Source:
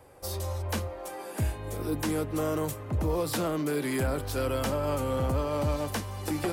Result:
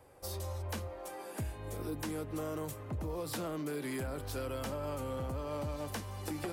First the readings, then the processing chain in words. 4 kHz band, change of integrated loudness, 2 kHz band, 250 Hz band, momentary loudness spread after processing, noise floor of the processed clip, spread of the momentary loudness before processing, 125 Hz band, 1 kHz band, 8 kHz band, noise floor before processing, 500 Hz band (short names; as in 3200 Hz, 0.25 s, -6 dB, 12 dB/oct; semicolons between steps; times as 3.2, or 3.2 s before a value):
-8.0 dB, -8.5 dB, -8.5 dB, -8.5 dB, 4 LU, -47 dBFS, 5 LU, -8.5 dB, -8.5 dB, -7.5 dB, -41 dBFS, -9.0 dB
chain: compressor, threshold -29 dBFS, peak gain reduction 5.5 dB; gain -5.5 dB